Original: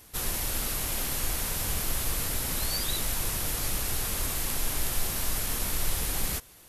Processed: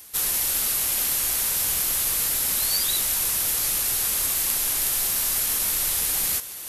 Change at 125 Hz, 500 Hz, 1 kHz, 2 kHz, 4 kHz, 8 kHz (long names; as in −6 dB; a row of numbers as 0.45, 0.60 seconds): −7.5, −1.5, +1.0, +3.5, +6.0, +9.0 decibels